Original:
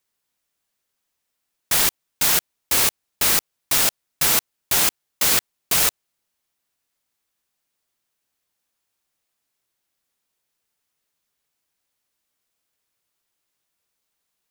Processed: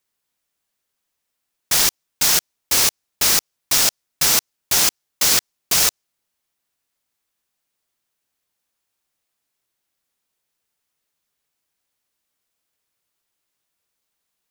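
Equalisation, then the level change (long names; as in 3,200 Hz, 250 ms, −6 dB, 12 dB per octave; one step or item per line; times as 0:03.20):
dynamic equaliser 5,600 Hz, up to +7 dB, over −37 dBFS, Q 1.5
0.0 dB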